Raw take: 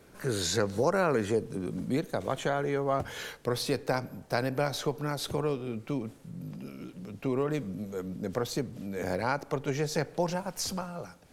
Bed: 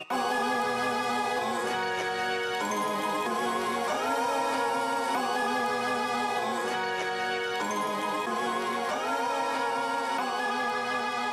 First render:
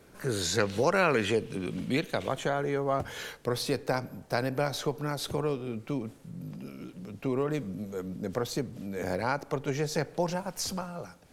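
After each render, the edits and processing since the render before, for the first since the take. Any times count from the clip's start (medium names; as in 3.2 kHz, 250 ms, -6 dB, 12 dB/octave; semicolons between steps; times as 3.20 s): 0.58–2.29 s: peaking EQ 2.8 kHz +13.5 dB 1.2 oct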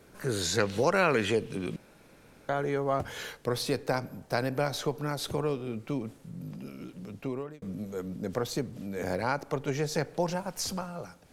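1.76–2.49 s: room tone; 7.11–7.62 s: fade out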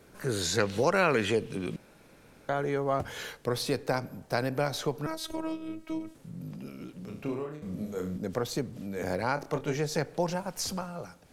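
5.06–6.15 s: robot voice 319 Hz; 7.04–8.18 s: flutter echo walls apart 5.7 m, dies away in 0.42 s; 9.34–9.77 s: doubling 26 ms -7.5 dB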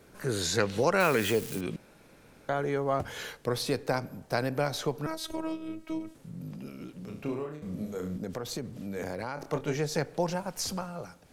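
1.00–1.61 s: zero-crossing glitches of -28.5 dBFS; 7.91–9.43 s: compression, threshold -30 dBFS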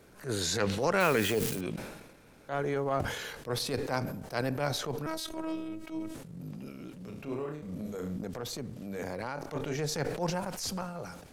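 transient shaper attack -11 dB, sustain -7 dB; decay stretcher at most 50 dB/s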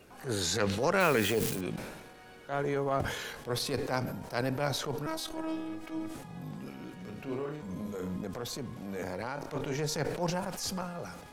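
add bed -24.5 dB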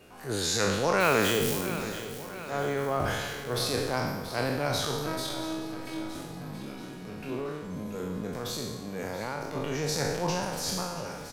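spectral sustain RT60 1.08 s; feedback delay 680 ms, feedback 56%, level -13 dB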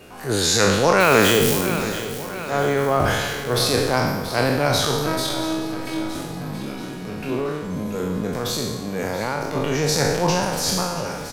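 trim +9.5 dB; peak limiter -2 dBFS, peak gain reduction 3 dB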